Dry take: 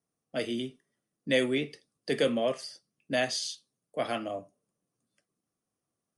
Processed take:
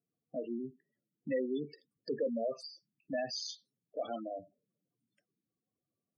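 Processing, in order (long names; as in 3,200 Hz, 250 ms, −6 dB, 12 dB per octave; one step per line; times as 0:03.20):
gate on every frequency bin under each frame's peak −10 dB strong
in parallel at −1 dB: downward compressor, threshold −39 dBFS, peak gain reduction 15 dB
on the sum: level −7.5 dB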